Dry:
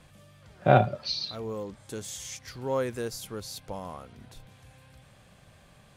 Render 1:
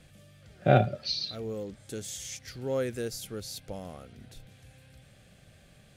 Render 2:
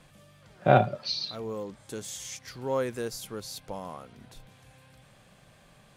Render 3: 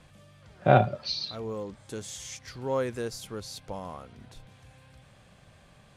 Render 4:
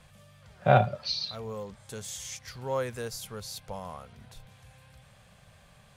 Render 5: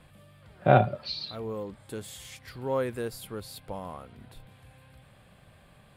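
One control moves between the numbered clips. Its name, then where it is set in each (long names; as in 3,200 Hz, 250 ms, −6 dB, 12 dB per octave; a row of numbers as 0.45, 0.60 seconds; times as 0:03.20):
parametric band, centre frequency: 1,000, 75, 16,000, 310, 6,100 Hertz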